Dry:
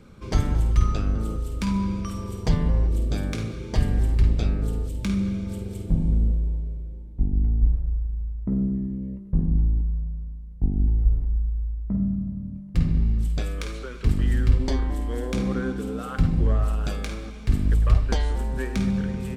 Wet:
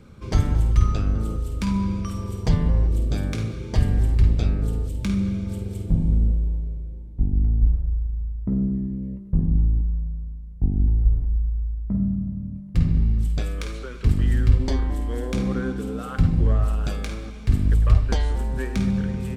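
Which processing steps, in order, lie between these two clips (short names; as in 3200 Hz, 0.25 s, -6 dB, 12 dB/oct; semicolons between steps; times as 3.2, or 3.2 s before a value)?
bell 96 Hz +4.5 dB 1.2 oct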